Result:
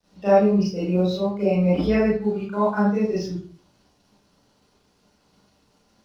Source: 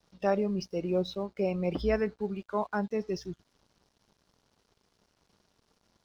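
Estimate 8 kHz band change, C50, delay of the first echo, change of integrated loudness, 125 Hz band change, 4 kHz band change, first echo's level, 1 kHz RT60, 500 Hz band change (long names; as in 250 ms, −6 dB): can't be measured, 1.5 dB, no echo audible, +10.0 dB, +12.0 dB, +6.5 dB, no echo audible, 0.40 s, +9.0 dB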